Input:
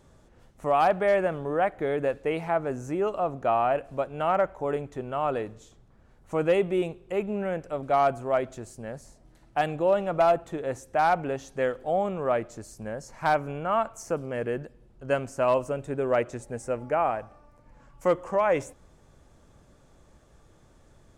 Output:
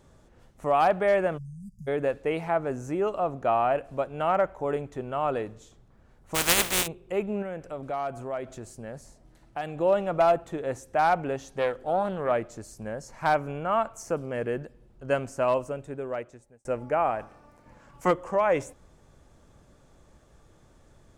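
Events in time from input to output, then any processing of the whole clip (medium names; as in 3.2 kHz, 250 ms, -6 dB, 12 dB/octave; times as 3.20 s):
1.38–1.88 s: spectral selection erased 220–4700 Hz
6.34–6.86 s: spectral contrast reduction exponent 0.2
7.42–9.77 s: compression 2:1, threshold -34 dBFS
11.51–12.31 s: loudspeaker Doppler distortion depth 0.25 ms
15.31–16.65 s: fade out
17.19–18.10 s: spectral peaks clipped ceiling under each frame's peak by 13 dB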